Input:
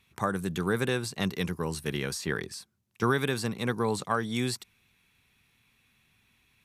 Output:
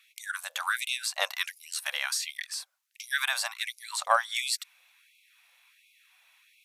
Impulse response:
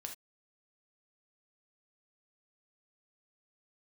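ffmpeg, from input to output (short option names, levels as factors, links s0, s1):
-af "afftfilt=real='re*gte(b*sr/1024,500*pow(2100/500,0.5+0.5*sin(2*PI*1.4*pts/sr)))':imag='im*gte(b*sr/1024,500*pow(2100/500,0.5+0.5*sin(2*PI*1.4*pts/sr)))':win_size=1024:overlap=0.75,volume=2"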